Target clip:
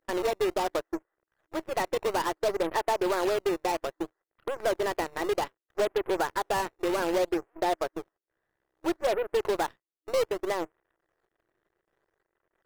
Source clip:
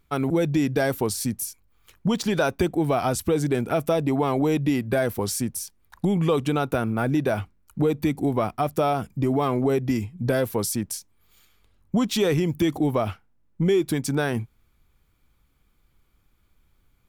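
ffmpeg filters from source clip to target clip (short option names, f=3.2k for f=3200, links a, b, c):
-filter_complex "[0:a]aeval=exprs='val(0)+0.5*0.0119*sgn(val(0))':c=same,afftfilt=real='re*between(b*sr/4096,230,1500)':imag='im*between(b*sr/4096,230,1500)':win_size=4096:overlap=0.75,aeval=exprs='0.141*(cos(1*acos(clip(val(0)/0.141,-1,1)))-cos(1*PI/2))+0.02*(cos(4*acos(clip(val(0)/0.141,-1,1)))-cos(4*PI/2))+0.0224*(cos(6*acos(clip(val(0)/0.141,-1,1)))-cos(6*PI/2))+0.0178*(cos(7*acos(clip(val(0)/0.141,-1,1)))-cos(7*PI/2))':c=same,asplit=2[a][b];[b]acrusher=samples=21:mix=1:aa=0.000001:lfo=1:lforange=33.6:lforate=0.46,volume=-6dB[c];[a][c]amix=inputs=2:normalize=0,asetrate=59535,aresample=44100,volume=-7.5dB"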